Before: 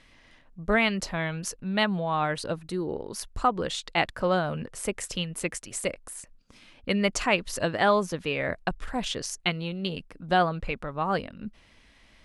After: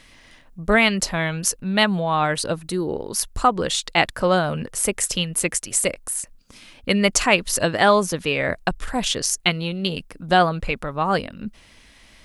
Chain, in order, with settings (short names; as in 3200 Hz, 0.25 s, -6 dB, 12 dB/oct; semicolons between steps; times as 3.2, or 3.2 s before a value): high shelf 6300 Hz +11.5 dB; gain +6 dB